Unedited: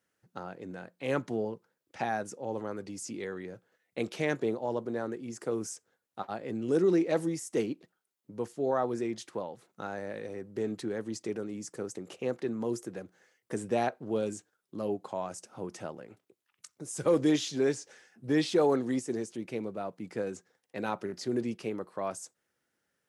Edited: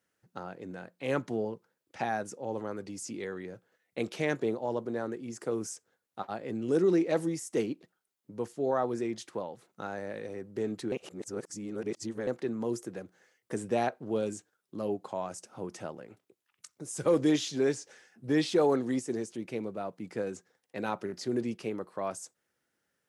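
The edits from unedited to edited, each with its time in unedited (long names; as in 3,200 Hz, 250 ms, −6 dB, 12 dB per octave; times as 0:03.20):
0:10.92–0:12.27: reverse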